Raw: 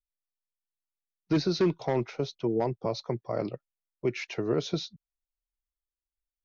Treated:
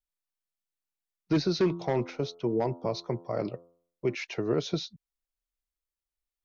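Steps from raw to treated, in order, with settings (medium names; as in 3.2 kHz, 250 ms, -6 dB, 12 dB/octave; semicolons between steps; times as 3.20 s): 1.61–4.15 s: de-hum 85.93 Hz, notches 16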